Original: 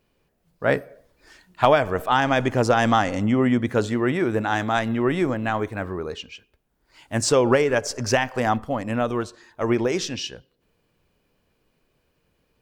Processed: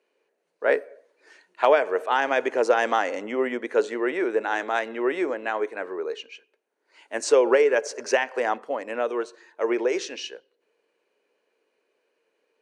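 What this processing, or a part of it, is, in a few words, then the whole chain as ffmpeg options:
phone speaker on a table: -af "highpass=frequency=370:width=0.5412,highpass=frequency=370:width=1.3066,equalizer=frequency=440:width_type=q:width=4:gain=4,equalizer=frequency=740:width_type=q:width=4:gain=-4,equalizer=frequency=1200:width_type=q:width=4:gain=-5,equalizer=frequency=3400:width_type=q:width=4:gain=-7,equalizer=frequency=5100:width_type=q:width=4:gain=-8,equalizer=frequency=7500:width_type=q:width=4:gain=-7,lowpass=frequency=8500:width=0.5412,lowpass=frequency=8500:width=1.3066"

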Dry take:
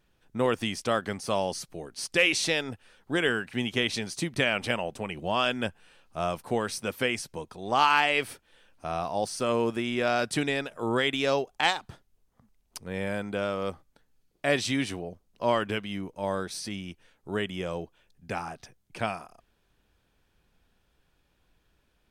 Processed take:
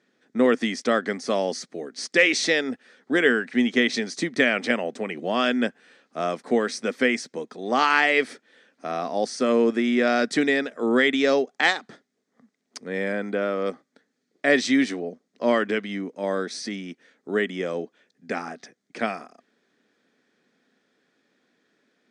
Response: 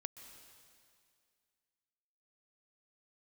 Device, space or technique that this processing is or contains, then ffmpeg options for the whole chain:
television speaker: -filter_complex "[0:a]asettb=1/sr,asplit=3[link_01][link_02][link_03];[link_01]atrim=end=13.124[link_04];[link_02]atrim=start=13.12:end=13.66,asetpts=PTS-STARTPTS,afade=type=in:duration=0.004:curve=qsin,afade=type=out:start_time=0.536:duration=0.004:curve=qsin,acrossover=split=3000[link_05][link_06];[link_06]acompressor=threshold=-53dB:ratio=4:attack=1:release=60[link_07];[link_05][link_07]amix=inputs=2:normalize=0[link_08];[link_03]atrim=start=13.656[link_09];[link_04][link_08]acrossfade=duration=0.004:curve1=hsin:curve2=qsin[link_10];[link_10][link_09]acrossfade=duration=0.004:curve1=qsin:curve2=hsin,highpass=frequency=200:width=0.5412,highpass=frequency=200:width=1.3066,equalizer=frequency=250:width_type=q:width=4:gain=8,equalizer=frequency=440:width_type=q:width=4:gain=4,equalizer=frequency=930:width_type=q:width=4:gain=-8,equalizer=frequency=1900:width_type=q:width=4:gain=7,equalizer=frequency=2800:width_type=q:width=4:gain=-7,lowpass=frequency=7400:width=0.5412,lowpass=frequency=7400:width=1.3066,volume=4dB"

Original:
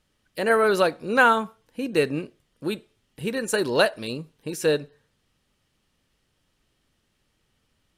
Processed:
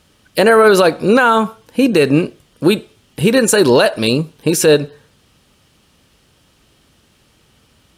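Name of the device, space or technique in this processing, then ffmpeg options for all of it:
mastering chain: -af "highpass=47,equalizer=frequency=1900:width_type=o:width=0.31:gain=-4,acompressor=threshold=-23dB:ratio=2.5,alimiter=level_in=18.5dB:limit=-1dB:release=50:level=0:latency=1,volume=-1dB"

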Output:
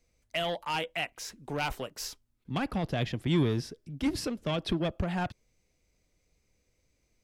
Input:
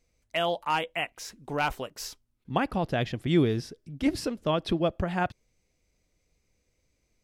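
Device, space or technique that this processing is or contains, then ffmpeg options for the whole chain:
one-band saturation: -filter_complex "[0:a]acrossover=split=240|2300[link_01][link_02][link_03];[link_02]asoftclip=type=tanh:threshold=-29.5dB[link_04];[link_01][link_04][link_03]amix=inputs=3:normalize=0"

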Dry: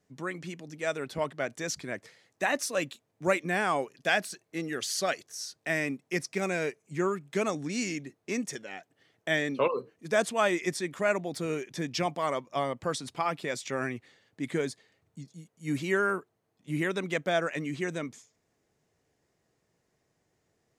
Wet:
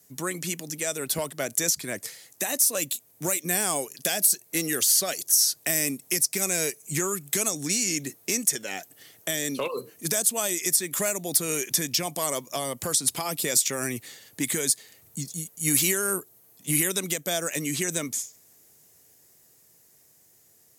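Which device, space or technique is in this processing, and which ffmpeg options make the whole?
FM broadcast chain: -filter_complex "[0:a]highpass=56,dynaudnorm=framelen=670:gausssize=11:maxgain=4dB,acrossover=split=720|3700[link_01][link_02][link_03];[link_01]acompressor=threshold=-32dB:ratio=4[link_04];[link_02]acompressor=threshold=-40dB:ratio=4[link_05];[link_03]acompressor=threshold=-38dB:ratio=4[link_06];[link_04][link_05][link_06]amix=inputs=3:normalize=0,aemphasis=mode=production:type=50fm,alimiter=limit=-23.5dB:level=0:latency=1:release=339,asoftclip=type=hard:threshold=-25.5dB,lowpass=frequency=15000:width=0.5412,lowpass=frequency=15000:width=1.3066,aemphasis=mode=production:type=50fm,volume=6dB"

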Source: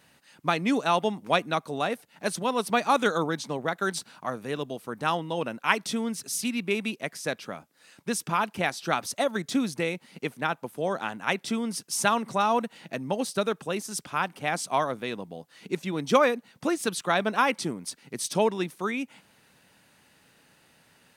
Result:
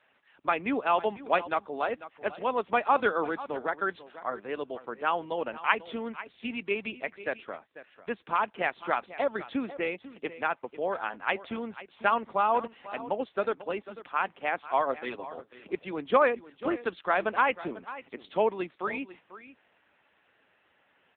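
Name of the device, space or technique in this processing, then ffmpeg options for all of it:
satellite phone: -filter_complex "[0:a]asplit=3[link_01][link_02][link_03];[link_01]afade=type=out:start_time=14.85:duration=0.02[link_04];[link_02]aecho=1:1:7.4:0.62,afade=type=in:start_time=14.85:duration=0.02,afade=type=out:start_time=15.3:duration=0.02[link_05];[link_03]afade=type=in:start_time=15.3:duration=0.02[link_06];[link_04][link_05][link_06]amix=inputs=3:normalize=0,highpass=340,lowpass=3200,aecho=1:1:494:0.168" -ar 8000 -c:a libopencore_amrnb -b:a 6700

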